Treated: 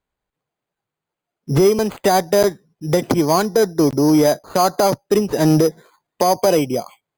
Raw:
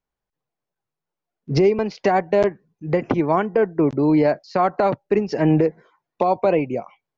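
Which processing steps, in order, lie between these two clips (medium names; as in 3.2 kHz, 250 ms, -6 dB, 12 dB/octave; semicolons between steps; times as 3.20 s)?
careless resampling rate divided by 8×, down none, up hold; Chebyshev shaper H 5 -25 dB, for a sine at -7 dBFS; trim +2.5 dB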